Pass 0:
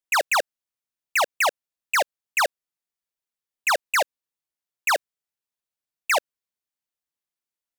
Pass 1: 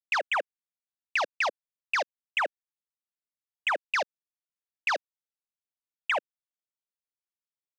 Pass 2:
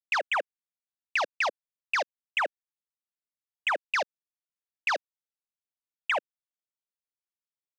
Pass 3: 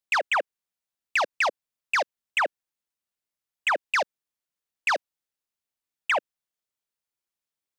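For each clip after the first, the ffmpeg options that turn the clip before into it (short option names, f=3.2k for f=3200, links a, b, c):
-filter_complex "[0:a]lowpass=8.4k,afwtdn=0.0316,acrossover=split=230[a][b];[b]acompressor=threshold=-31dB:ratio=3[c];[a][c]amix=inputs=2:normalize=0,volume=3dB"
-af anull
-af "asoftclip=type=tanh:threshold=-20.5dB,volume=5dB"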